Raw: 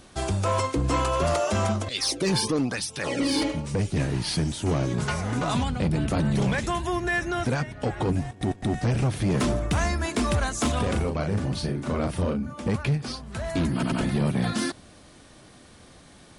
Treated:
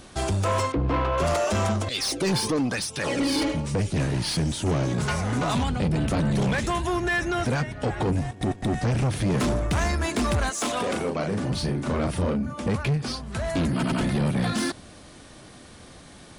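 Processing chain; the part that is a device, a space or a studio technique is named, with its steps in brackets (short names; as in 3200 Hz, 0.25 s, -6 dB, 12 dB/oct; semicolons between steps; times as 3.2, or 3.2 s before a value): 0.72–1.18 air absorption 350 m; 10.49–11.48 HPF 420 Hz -> 140 Hz 12 dB/oct; saturation between pre-emphasis and de-emphasis (high shelf 7000 Hz +11 dB; soft clip -23 dBFS, distortion -14 dB; high shelf 7000 Hz -11 dB); gain +4 dB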